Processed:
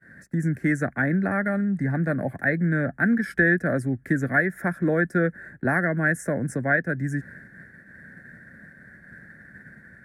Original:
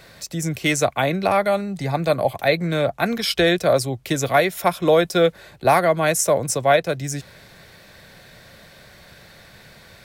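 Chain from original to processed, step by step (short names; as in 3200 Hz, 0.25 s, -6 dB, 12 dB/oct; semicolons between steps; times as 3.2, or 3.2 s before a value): EQ curve 100 Hz 0 dB, 160 Hz +5 dB, 250 Hz +10 dB, 430 Hz -4 dB, 1100 Hz -13 dB, 1700 Hz +14 dB, 2800 Hz -29 dB, 4200 Hz -27 dB, 10000 Hz -11 dB, 15000 Hz -23 dB; expander -37 dBFS; in parallel at +3 dB: compressor, threshold -30 dBFS, peak gain reduction 18 dB; on the sum: HPF 47 Hz; gain -6.5 dB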